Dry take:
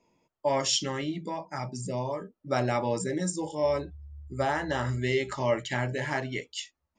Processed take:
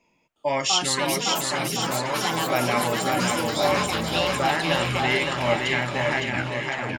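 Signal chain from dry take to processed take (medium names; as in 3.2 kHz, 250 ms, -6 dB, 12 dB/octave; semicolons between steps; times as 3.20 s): tape stop on the ending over 0.78 s; fifteen-band graphic EQ 100 Hz -5 dB, 400 Hz -4 dB, 2.5 kHz +9 dB; ever faster or slower copies 360 ms, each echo +5 st, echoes 3; on a send: bouncing-ball echo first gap 560 ms, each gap 0.9×, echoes 5; on the sum: trim +2.5 dB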